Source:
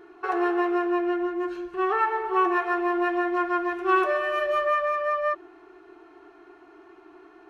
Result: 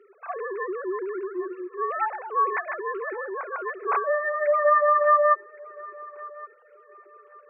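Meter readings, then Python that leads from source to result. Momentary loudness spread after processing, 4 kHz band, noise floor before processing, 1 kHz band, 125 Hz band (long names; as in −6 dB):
21 LU, below −25 dB, −52 dBFS, +1.0 dB, can't be measured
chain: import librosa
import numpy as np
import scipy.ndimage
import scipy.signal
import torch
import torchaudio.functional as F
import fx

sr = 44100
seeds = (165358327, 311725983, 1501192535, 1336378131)

y = fx.sine_speech(x, sr)
y = scipy.signal.sosfilt(scipy.signal.butter(4, 270.0, 'highpass', fs=sr, output='sos'), y)
y = fx.echo_thinned(y, sr, ms=1118, feedback_pct=30, hz=440.0, wet_db=-20)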